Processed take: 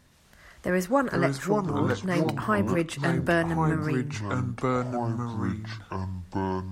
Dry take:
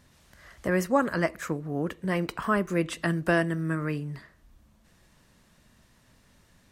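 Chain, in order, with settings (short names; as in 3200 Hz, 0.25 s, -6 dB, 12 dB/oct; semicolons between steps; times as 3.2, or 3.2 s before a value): echoes that change speed 0.251 s, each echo -5 st, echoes 2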